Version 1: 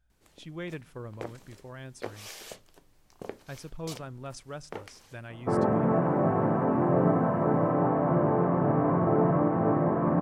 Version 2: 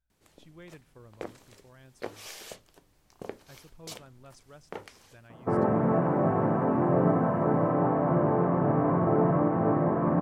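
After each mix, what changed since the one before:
speech −11.5 dB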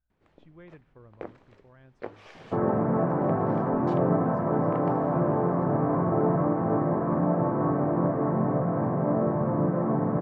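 second sound: entry −2.95 s
master: add low-pass filter 2,000 Hz 12 dB per octave

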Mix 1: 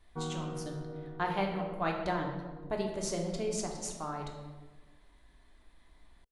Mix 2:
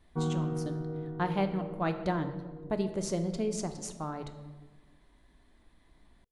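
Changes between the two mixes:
speech: send −7.5 dB
master: add parametric band 180 Hz +8.5 dB 2.8 octaves

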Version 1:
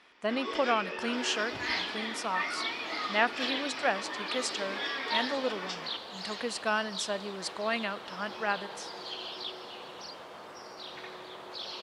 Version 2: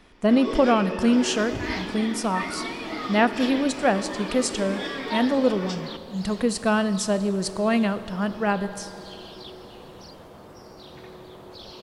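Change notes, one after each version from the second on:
speech: send +10.0 dB
second sound −6.0 dB
master: remove resonant band-pass 2,300 Hz, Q 0.53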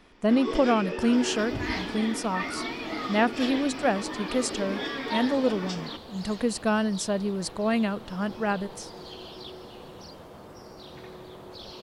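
reverb: off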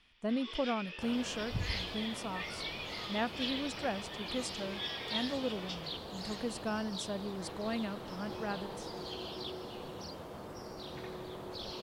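speech −11.5 dB
first sound: add resonant band-pass 3,200 Hz, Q 2.4

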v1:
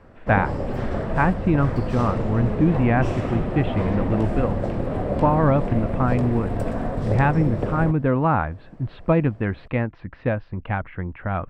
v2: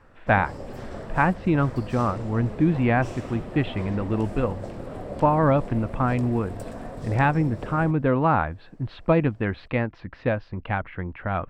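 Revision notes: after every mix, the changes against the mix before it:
background −9.0 dB
master: add bass and treble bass −3 dB, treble +11 dB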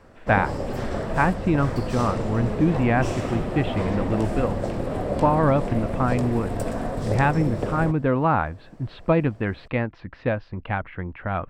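background +8.5 dB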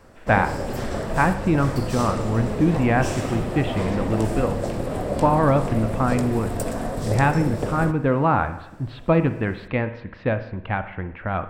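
background: add high-shelf EQ 6,000 Hz +10.5 dB
reverb: on, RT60 0.85 s

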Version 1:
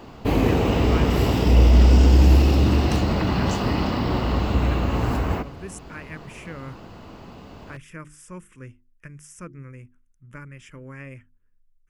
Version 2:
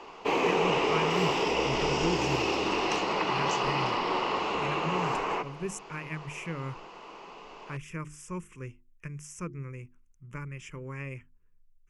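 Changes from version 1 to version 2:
background: add band-pass filter 510–5,700 Hz
master: add EQ curve with evenly spaced ripples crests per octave 0.75, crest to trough 7 dB

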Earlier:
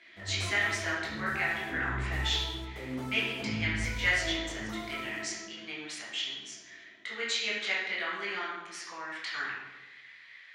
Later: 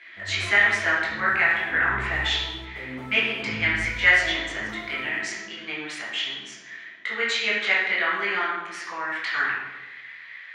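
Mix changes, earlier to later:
speech +7.5 dB
master: add drawn EQ curve 320 Hz 0 dB, 1,800 Hz +4 dB, 5,400 Hz −7 dB

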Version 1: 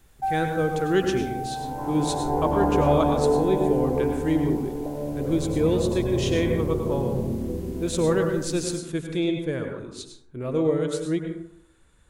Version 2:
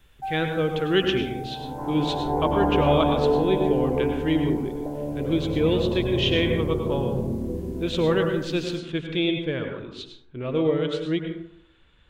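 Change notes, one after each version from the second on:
speech: add low-pass with resonance 3,100 Hz, resonance Q 3.5
first sound −5.5 dB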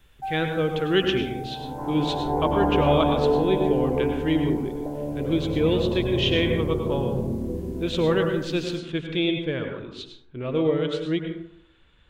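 nothing changed

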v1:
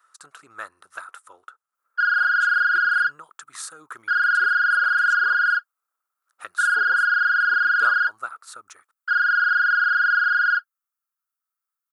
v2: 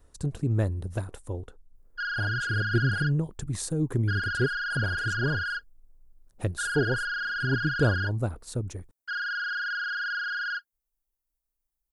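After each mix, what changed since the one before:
master: remove high-pass with resonance 1,300 Hz, resonance Q 9.4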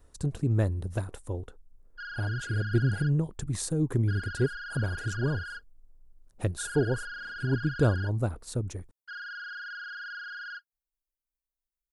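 background −9.0 dB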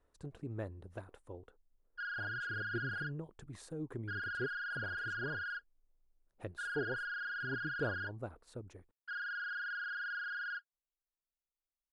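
speech −10.0 dB
master: add bass and treble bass −9 dB, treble −13 dB

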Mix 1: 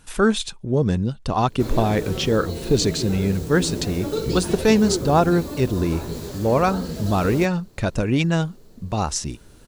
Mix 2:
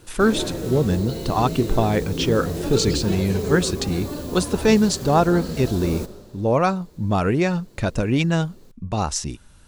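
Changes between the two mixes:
background: entry −1.40 s
reverb: on, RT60 2.3 s

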